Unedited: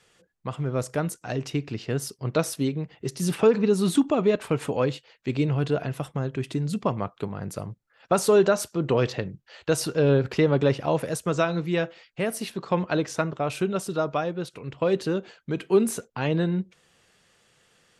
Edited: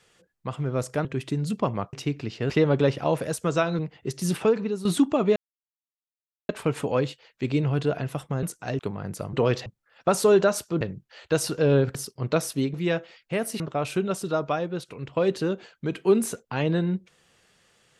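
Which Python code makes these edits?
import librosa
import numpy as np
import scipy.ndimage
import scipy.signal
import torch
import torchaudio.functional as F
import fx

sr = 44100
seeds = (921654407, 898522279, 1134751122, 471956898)

y = fx.edit(x, sr, fx.swap(start_s=1.05, length_s=0.36, other_s=6.28, other_length_s=0.88),
    fx.swap(start_s=1.98, length_s=0.79, other_s=10.32, other_length_s=1.29),
    fx.fade_out_to(start_s=3.28, length_s=0.55, floor_db=-12.5),
    fx.insert_silence(at_s=4.34, length_s=1.13),
    fx.move(start_s=8.85, length_s=0.33, to_s=7.7),
    fx.cut(start_s=12.47, length_s=0.78), tone=tone)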